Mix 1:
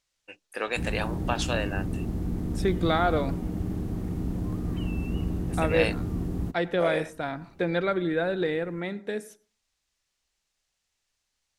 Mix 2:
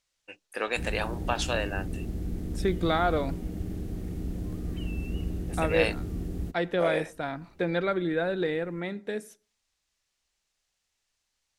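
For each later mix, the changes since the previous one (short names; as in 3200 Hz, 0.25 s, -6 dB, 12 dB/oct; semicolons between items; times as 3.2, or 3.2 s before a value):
second voice: send -7.5 dB; background: add graphic EQ 125/250/1000 Hz -6/-4/-11 dB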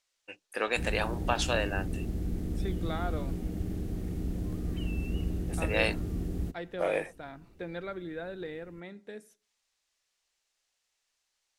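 second voice -11.0 dB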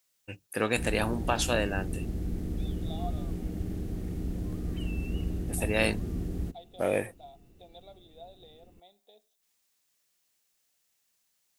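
first voice: remove BPF 450–6400 Hz; second voice: add double band-pass 1600 Hz, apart 2.3 oct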